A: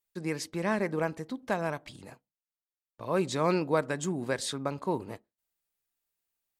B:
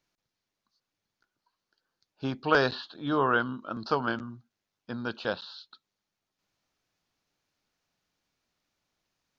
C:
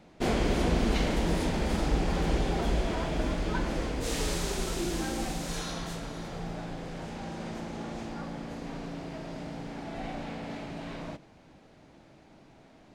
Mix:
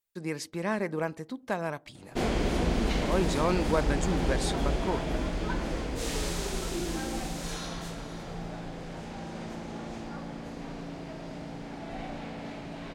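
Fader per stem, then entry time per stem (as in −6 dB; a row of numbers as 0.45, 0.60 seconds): −1.0 dB, muted, −1.0 dB; 0.00 s, muted, 1.95 s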